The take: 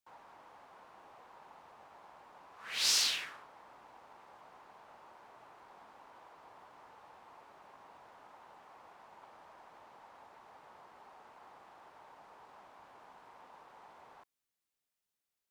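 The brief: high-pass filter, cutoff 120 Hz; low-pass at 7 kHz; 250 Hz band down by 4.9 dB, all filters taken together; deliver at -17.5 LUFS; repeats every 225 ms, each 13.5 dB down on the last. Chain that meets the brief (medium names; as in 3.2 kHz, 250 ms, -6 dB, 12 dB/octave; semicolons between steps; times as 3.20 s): high-pass 120 Hz; low-pass 7 kHz; peaking EQ 250 Hz -6.5 dB; feedback delay 225 ms, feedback 21%, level -13.5 dB; trim +15 dB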